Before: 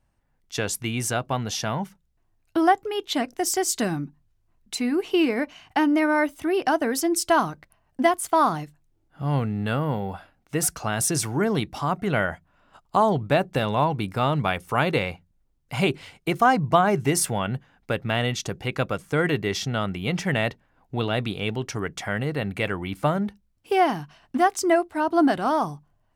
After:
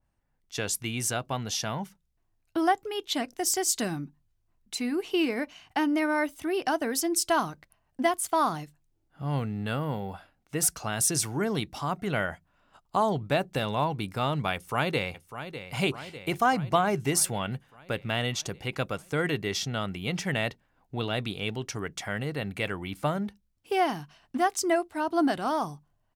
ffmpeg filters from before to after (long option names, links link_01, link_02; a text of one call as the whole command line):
ffmpeg -i in.wav -filter_complex "[0:a]asplit=2[link_01][link_02];[link_02]afade=type=in:start_time=14.54:duration=0.01,afade=type=out:start_time=15.74:duration=0.01,aecho=0:1:600|1200|1800|2400|3000|3600|4200|4800:0.281838|0.183195|0.119077|0.0773998|0.0503099|0.0327014|0.0212559|0.0138164[link_03];[link_01][link_03]amix=inputs=2:normalize=0,adynamicequalizer=threshold=0.0126:dfrequency=2600:dqfactor=0.7:tfrequency=2600:tqfactor=0.7:attack=5:release=100:ratio=0.375:range=2.5:mode=boostabove:tftype=highshelf,volume=-5.5dB" out.wav